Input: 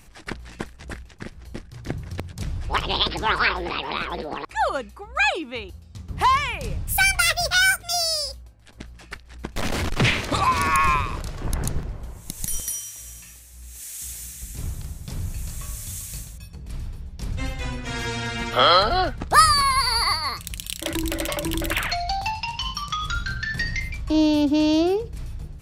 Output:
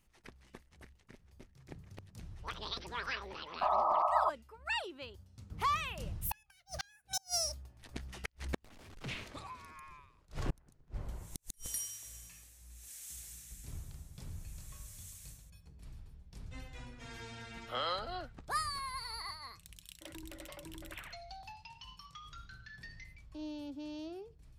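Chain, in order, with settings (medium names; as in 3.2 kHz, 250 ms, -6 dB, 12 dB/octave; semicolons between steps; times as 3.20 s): Doppler pass-by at 9.59 s, 20 m/s, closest 2.6 m; speed mistake 24 fps film run at 25 fps; inverted gate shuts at -38 dBFS, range -36 dB; painted sound noise, 3.61–4.30 s, 590–1300 Hz -46 dBFS; trim +16 dB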